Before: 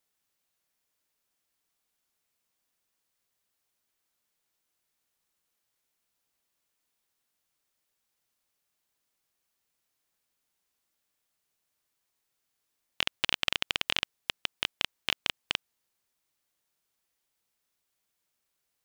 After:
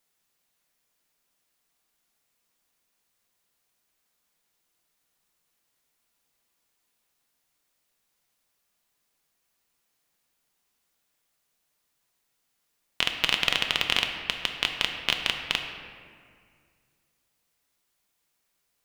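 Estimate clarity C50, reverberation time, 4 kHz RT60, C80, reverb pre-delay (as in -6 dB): 5.5 dB, 2.1 s, 1.2 s, 7.0 dB, 4 ms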